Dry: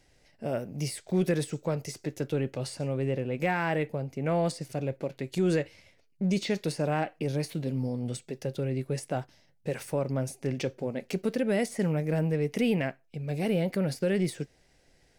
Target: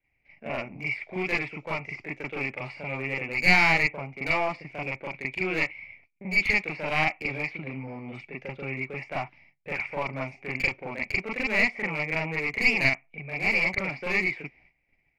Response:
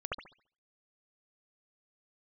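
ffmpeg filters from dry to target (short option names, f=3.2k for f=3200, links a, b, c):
-filter_complex "[0:a]asplit=2[a][b];[b]adynamicsmooth=sensitivity=6:basefreq=1k,volume=2dB[c];[a][c]amix=inputs=2:normalize=0,lowshelf=f=360:g=-7,acrossover=split=320[d][e];[d]acompressor=threshold=-40dB:ratio=5[f];[f][e]amix=inputs=2:normalize=0,lowpass=f=2.3k:t=q:w=11,agate=range=-15dB:threshold=-56dB:ratio=16:detection=peak,aeval=exprs='clip(val(0),-1,0.075)':c=same[g];[1:a]atrim=start_sample=2205,atrim=end_sample=4410,asetrate=79380,aresample=44100[h];[g][h]afir=irnorm=-1:irlink=0"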